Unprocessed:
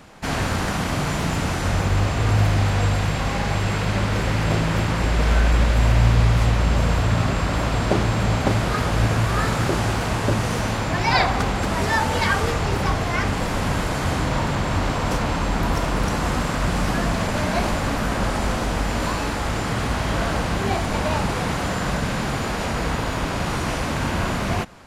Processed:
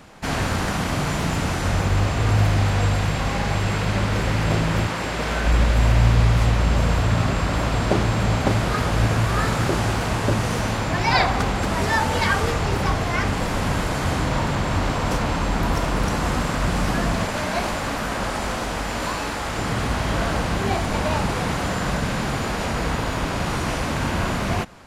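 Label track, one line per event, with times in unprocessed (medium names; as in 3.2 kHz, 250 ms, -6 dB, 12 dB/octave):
4.870000	5.450000	high-pass 350 Hz -> 160 Hz 6 dB/octave
17.250000	19.580000	bass shelf 290 Hz -7 dB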